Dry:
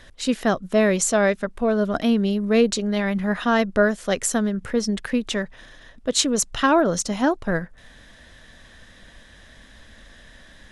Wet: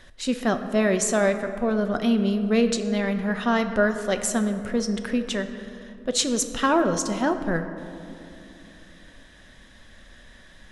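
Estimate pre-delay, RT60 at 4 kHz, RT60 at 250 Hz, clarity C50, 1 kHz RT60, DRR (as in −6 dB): 5 ms, 1.3 s, 3.9 s, 9.5 dB, 2.7 s, 7.0 dB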